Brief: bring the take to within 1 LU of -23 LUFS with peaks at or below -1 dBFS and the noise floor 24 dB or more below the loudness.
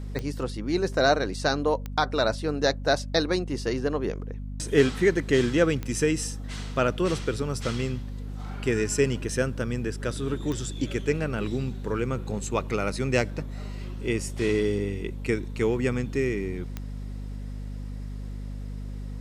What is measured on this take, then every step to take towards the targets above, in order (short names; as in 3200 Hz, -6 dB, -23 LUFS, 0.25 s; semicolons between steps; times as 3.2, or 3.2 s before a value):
clicks 5; hum 50 Hz; harmonics up to 250 Hz; hum level -32 dBFS; loudness -27.0 LUFS; peak -8.0 dBFS; loudness target -23.0 LUFS
-> de-click; de-hum 50 Hz, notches 5; gain +4 dB